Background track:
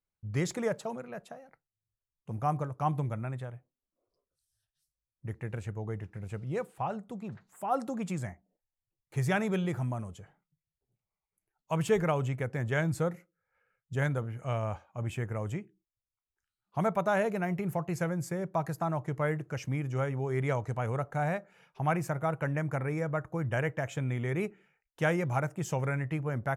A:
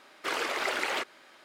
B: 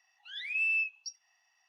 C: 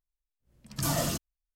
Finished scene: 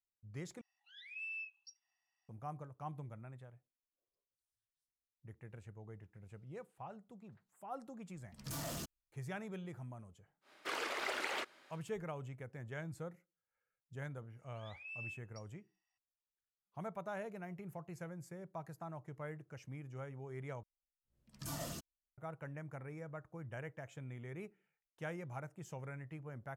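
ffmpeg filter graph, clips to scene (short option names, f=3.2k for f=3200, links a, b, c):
-filter_complex "[2:a]asplit=2[a][b];[3:a]asplit=2[c][d];[0:a]volume=-15.5dB[e];[c]asoftclip=type=tanh:threshold=-32dB[f];[e]asplit=3[g][h][i];[g]atrim=end=0.614[j];[a]atrim=end=1.68,asetpts=PTS-STARTPTS,volume=-15dB[k];[h]atrim=start=2.286:end=20.634[l];[d]atrim=end=1.55,asetpts=PTS-STARTPTS,volume=-14.5dB[m];[i]atrim=start=22.176[n];[f]atrim=end=1.55,asetpts=PTS-STARTPTS,volume=-7.5dB,afade=t=in:d=0.004:c=hsin,afade=t=out:st=1.546:d=0.004:c=hsin,adelay=7680[o];[1:a]atrim=end=1.44,asetpts=PTS-STARTPTS,volume=-8.5dB,afade=t=in:d=0.1,afade=t=out:st=1.34:d=0.1,adelay=10410[p];[b]atrim=end=1.68,asetpts=PTS-STARTPTS,volume=-18dB,afade=t=in:d=0.004:c=hsin,afade=t=out:st=1.676:d=0.004:c=hsin,adelay=14300[q];[j][k]acrossfade=d=0.004:c1=hsin:c2=hsin[r];[r][l]acrossfade=d=0.004:c1=hsin:c2=hsin[s];[s][m]acrossfade=d=0.004:c1=hsin:c2=hsin[t];[t][n]acrossfade=d=0.004:c1=hsin:c2=hsin[u];[u][o][p][q]amix=inputs=4:normalize=0"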